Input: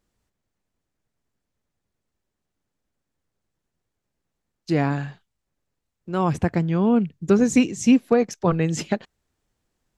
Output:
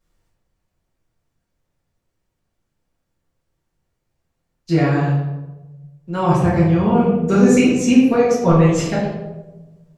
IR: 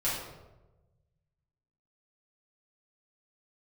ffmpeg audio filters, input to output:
-filter_complex "[0:a]asettb=1/sr,asplit=3[a][b][c];[a]atrim=end=6.894[d];[b]atrim=start=6.89:end=7.5,asetpts=PTS-STARTPTS,afade=t=in:d=0.004:c=qsin,afade=t=out:st=0.606:d=0.004:c=qsin,asplit=2[e][f];[f]adelay=36,volume=-4.5dB[g];[e][g]amix=inputs=2:normalize=0,atrim=end_sample=26901[h];[c]atrim=start=7.496[i];[d][h]acrossfade=d=0.004:c1=hsin:c2=qsin[j];[j][i]acrossfade=d=0.004:c1=qsin:c2=hsin[k];[1:a]atrim=start_sample=2205[l];[k][l]afir=irnorm=-1:irlink=0,volume=-2dB"

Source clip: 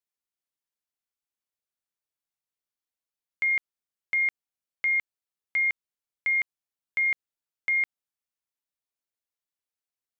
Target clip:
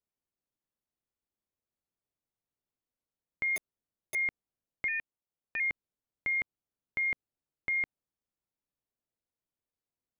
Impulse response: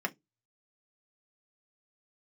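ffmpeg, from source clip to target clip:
-filter_complex "[0:a]asettb=1/sr,asplit=3[a][b][c];[a]atrim=end=3.564[d];[b]atrim=start=3.56:end=4.15,asetpts=PTS-STARTPTS,afade=t=in:d=0.004:c=qsin,afade=t=out:st=0.586:d=0.004:c=qsin,aeval=exprs='(mod(17.8*val(0)+1,2)-1)/17.8':c=same[e];[c]atrim=start=4.146[f];[d][e]acrossfade=d=0.004:c1=hsin:c2=qsin[g];[g][f]acrossfade=d=0.004:c1=qsin:c2=hsin,tiltshelf=f=920:g=9,asettb=1/sr,asplit=3[h][i][j];[h]atrim=end=4.884[k];[i]atrim=start=4.88:end=5.6,asetpts=PTS-STARTPTS,afade=t=in:d=0.004:c=qsin,afade=t=out:st=0.716:d=0.004:c=qsin,aeval=exprs='val(0)*sin(2*PI*320*n/s)':c=same[l];[j]atrim=start=5.596[m];[k][l]acrossfade=d=0.004:c1=hsin:c2=qsin[n];[n][m]acrossfade=d=0.004:c1=qsin:c2=hsin"

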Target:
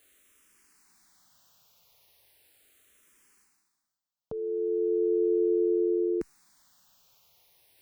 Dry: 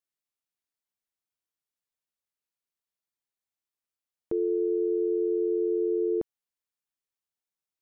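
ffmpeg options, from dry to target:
-filter_complex "[0:a]areverse,acompressor=mode=upward:threshold=-39dB:ratio=2.5,areverse,asplit=2[a][b];[b]afreqshift=-0.37[c];[a][c]amix=inputs=2:normalize=1,volume=2dB"

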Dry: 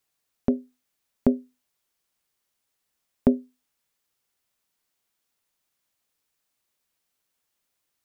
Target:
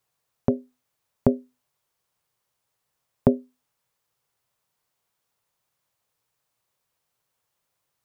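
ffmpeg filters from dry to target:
-af "equalizer=f=125:t=o:w=1:g=12,equalizer=f=250:t=o:w=1:g=-4,equalizer=f=500:t=o:w=1:g=5,equalizer=f=1k:t=o:w=1:g=6,volume=-1dB"

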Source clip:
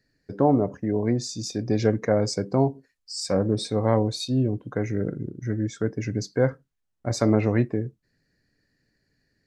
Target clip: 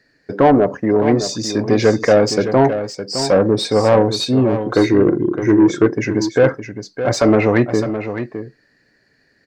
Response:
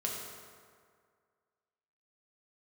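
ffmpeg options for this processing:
-filter_complex "[0:a]asettb=1/sr,asplit=3[a][b][c];[a]atrim=end=4.644[d];[b]atrim=start=4.64:end=5.86,asetpts=PTS-STARTPTS,afade=t=in:d=0.004:c=qsin,afade=t=out:st=1.216:d=0.004:c=qsin,equalizer=f=340:w=3.6:g=13.5[e];[c]atrim=start=5.856[f];[d][e]acrossfade=d=0.004:c1=hsin:c2=qsin[g];[g][f]acrossfade=d=0.004:c1=qsin:c2=hsin,asplit=2[h][i];[i]highpass=f=720:p=1,volume=19dB,asoftclip=type=tanh:threshold=-6.5dB[j];[h][j]amix=inputs=2:normalize=0,lowpass=f=2k:p=1,volume=-6dB,asplit=2[k][l];[l]aecho=0:1:612:0.316[m];[k][m]amix=inputs=2:normalize=0,volume=5dB"

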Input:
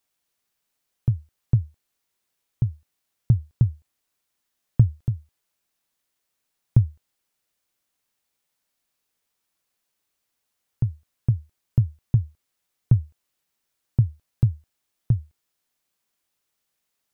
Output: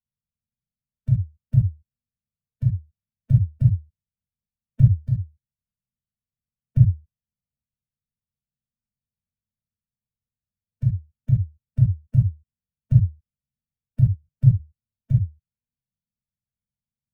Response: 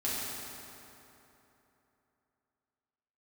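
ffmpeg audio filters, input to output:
-filter_complex "[0:a]asettb=1/sr,asplit=3[a][b][c];[a]atrim=end=14.054[d];[b]atrim=start=14.05:end=14.52,asetpts=PTS-STARTPTS,afade=t=in:d=0.004:c=qsin,afade=t=out:st=0.466:d=0.004:c=qsin,aecho=1:1:6.9:0.6,atrim=end_sample=20727[e];[c]atrim=start=14.516[f];[d][e]acrossfade=d=0.004:c1=hsin:c2=qsin[g];[g][f]acrossfade=d=0.004:c1=qsin:c2=hsin,acrossover=split=150|170|290[h][i][j][k];[k]acrusher=bits=5:dc=4:mix=0:aa=0.000001[l];[h][i][j][l]amix=inputs=4:normalize=0[m];[1:a]atrim=start_sample=2205,atrim=end_sample=3528[n];[m][n]afir=irnorm=-1:irlink=0,afftfilt=real='re*eq(mod(floor(b*sr/1024/220),2),0)':imag='im*eq(mod(floor(b*sr/1024/220),2),0)':win_size=1024:overlap=0.75"

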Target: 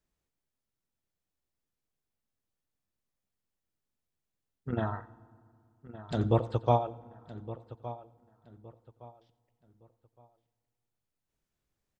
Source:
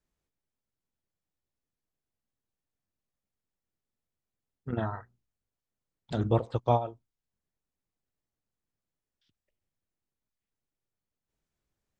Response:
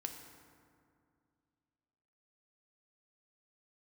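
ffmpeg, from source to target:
-filter_complex "[0:a]asplit=2[a][b];[b]adelay=1165,lowpass=f=3.5k:p=1,volume=-15dB,asplit=2[c][d];[d]adelay=1165,lowpass=f=3.5k:p=1,volume=0.3,asplit=2[e][f];[f]adelay=1165,lowpass=f=3.5k:p=1,volume=0.3[g];[a][c][e][g]amix=inputs=4:normalize=0,asplit=2[h][i];[1:a]atrim=start_sample=2205,adelay=88[j];[i][j]afir=irnorm=-1:irlink=0,volume=-15dB[k];[h][k]amix=inputs=2:normalize=0"

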